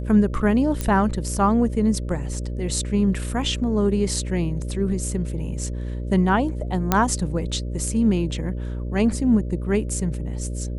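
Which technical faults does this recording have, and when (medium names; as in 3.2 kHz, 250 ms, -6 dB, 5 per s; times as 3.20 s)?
buzz 60 Hz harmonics 10 -28 dBFS
0.81 s: pop -11 dBFS
6.92 s: pop -3 dBFS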